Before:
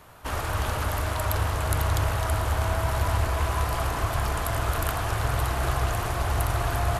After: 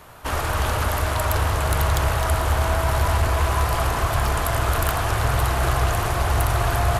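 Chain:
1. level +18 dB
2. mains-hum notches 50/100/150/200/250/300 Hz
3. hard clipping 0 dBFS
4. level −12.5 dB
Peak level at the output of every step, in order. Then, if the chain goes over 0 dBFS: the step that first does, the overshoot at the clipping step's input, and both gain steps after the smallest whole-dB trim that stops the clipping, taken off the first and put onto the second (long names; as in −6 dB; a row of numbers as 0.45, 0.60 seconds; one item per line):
+10.0, +9.5, 0.0, −12.5 dBFS
step 1, 9.5 dB
step 1 +8 dB, step 4 −2.5 dB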